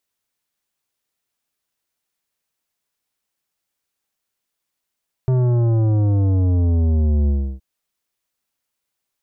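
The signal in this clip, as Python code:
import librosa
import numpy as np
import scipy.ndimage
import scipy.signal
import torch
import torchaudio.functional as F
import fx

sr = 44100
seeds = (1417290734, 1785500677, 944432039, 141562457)

y = fx.sub_drop(sr, level_db=-15.0, start_hz=130.0, length_s=2.32, drive_db=11.5, fade_s=0.32, end_hz=65.0)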